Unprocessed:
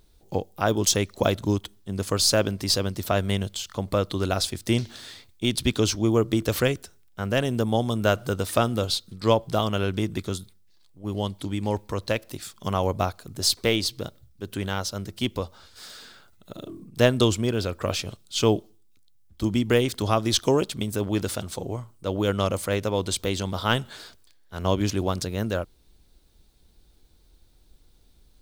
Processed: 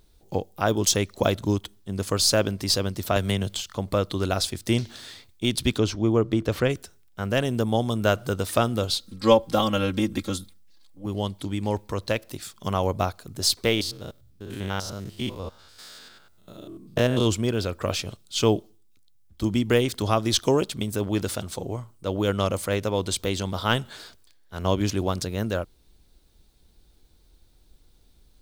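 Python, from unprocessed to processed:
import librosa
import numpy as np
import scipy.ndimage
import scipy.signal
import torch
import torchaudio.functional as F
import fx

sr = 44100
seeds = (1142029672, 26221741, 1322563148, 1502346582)

y = fx.band_squash(x, sr, depth_pct=100, at=(3.16, 3.61))
y = fx.lowpass(y, sr, hz=2400.0, slope=6, at=(5.78, 6.7))
y = fx.comb(y, sr, ms=3.7, depth=0.91, at=(8.99, 11.06))
y = fx.spec_steps(y, sr, hold_ms=100, at=(13.74, 17.25), fade=0.02)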